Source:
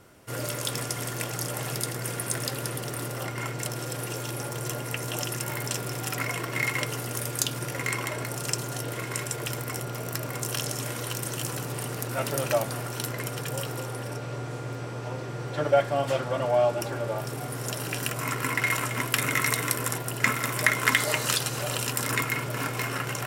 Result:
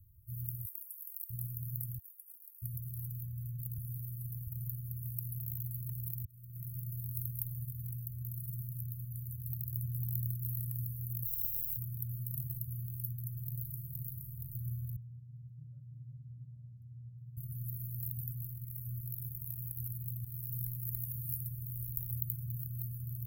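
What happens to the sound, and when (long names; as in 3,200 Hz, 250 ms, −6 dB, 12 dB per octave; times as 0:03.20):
0:00.65–0:01.30: Butterworth high-pass 770 Hz
0:01.98–0:02.62: Chebyshev high-pass with heavy ripple 990 Hz, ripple 9 dB
0:03.78–0:04.47: reverse
0:06.25–0:06.77: fade in
0:09.22–0:09.84: delay throw 500 ms, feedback 50%, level −3 dB
0:11.24–0:11.76: compressing power law on the bin magnitudes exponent 0.16
0:13.15–0:14.07: delay throw 470 ms, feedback 65%, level −0.5 dB
0:14.96–0:17.37: resonant band-pass 270 Hz, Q 1.3
0:18.29–0:20.51: downward compressor, threshold −26 dBFS
0:21.48–0:22.12: tube saturation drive 16 dB, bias 0.45
whole clip: inverse Chebyshev band-stop filter 320–6,500 Hz, stop band 60 dB; level +4.5 dB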